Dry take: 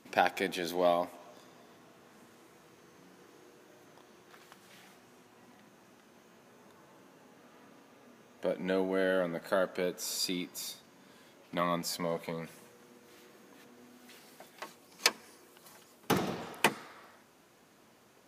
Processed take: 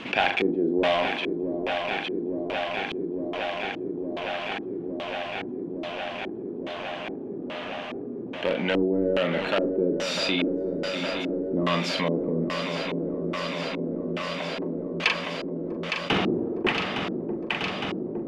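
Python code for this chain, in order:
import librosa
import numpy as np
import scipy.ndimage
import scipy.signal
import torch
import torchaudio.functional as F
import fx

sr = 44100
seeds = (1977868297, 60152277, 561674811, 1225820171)

p1 = (np.mod(10.0 ** (22.0 / 20.0) * x + 1.0, 2.0) - 1.0) / 10.0 ** (22.0 / 20.0)
p2 = x + F.gain(torch.from_numpy(p1), -6.5).numpy()
p3 = fx.doubler(p2, sr, ms=41.0, db=-8)
p4 = fx.echo_swing(p3, sr, ms=861, ratio=3, feedback_pct=78, wet_db=-12)
p5 = fx.filter_lfo_lowpass(p4, sr, shape='square', hz=1.2, low_hz=350.0, high_hz=2900.0, q=3.3)
p6 = fx.env_flatten(p5, sr, amount_pct=50)
y = F.gain(torch.from_numpy(p6), -1.0).numpy()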